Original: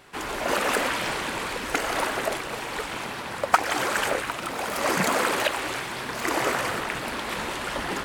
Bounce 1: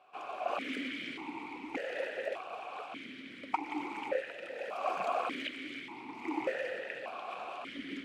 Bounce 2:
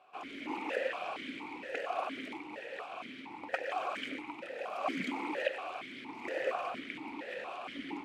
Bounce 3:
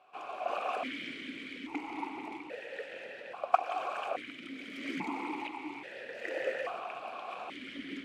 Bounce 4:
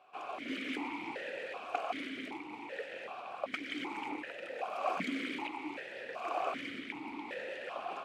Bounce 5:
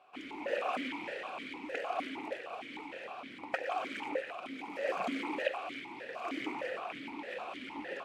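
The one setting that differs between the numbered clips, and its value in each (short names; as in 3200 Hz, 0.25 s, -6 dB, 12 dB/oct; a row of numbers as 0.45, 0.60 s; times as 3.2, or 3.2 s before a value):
vowel sequencer, rate: 1.7, 4.3, 1.2, 2.6, 6.5 Hz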